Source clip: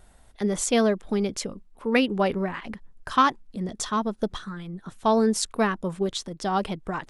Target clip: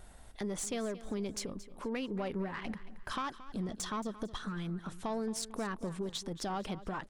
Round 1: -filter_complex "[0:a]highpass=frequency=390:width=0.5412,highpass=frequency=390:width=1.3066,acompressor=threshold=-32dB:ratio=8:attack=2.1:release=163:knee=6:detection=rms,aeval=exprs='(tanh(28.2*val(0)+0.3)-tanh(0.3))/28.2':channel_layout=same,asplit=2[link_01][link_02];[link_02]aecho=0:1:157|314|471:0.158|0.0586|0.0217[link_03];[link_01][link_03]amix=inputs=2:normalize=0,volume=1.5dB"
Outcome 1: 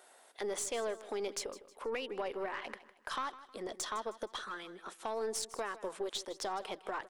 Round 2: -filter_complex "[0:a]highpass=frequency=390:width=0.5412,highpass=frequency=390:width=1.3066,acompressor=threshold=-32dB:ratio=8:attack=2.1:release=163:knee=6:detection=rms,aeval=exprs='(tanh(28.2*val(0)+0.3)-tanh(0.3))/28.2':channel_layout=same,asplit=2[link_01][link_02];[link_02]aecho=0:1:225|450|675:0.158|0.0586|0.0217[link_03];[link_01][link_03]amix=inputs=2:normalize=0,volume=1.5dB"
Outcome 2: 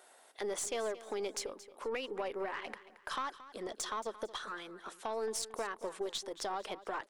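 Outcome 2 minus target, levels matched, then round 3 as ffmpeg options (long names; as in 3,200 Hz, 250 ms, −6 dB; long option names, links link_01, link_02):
500 Hz band +3.0 dB
-filter_complex "[0:a]acompressor=threshold=-32dB:ratio=8:attack=2.1:release=163:knee=6:detection=rms,aeval=exprs='(tanh(28.2*val(0)+0.3)-tanh(0.3))/28.2':channel_layout=same,asplit=2[link_01][link_02];[link_02]aecho=0:1:225|450|675:0.158|0.0586|0.0217[link_03];[link_01][link_03]amix=inputs=2:normalize=0,volume=1.5dB"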